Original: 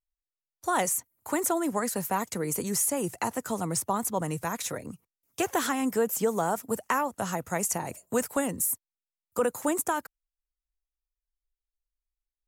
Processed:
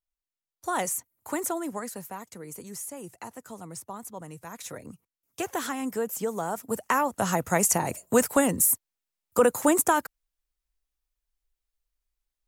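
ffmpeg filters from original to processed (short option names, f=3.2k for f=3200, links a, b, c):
-af "volume=15dB,afade=t=out:st=1.35:d=0.82:silence=0.354813,afade=t=in:st=4.45:d=0.4:silence=0.421697,afade=t=in:st=6.49:d=0.92:silence=0.334965"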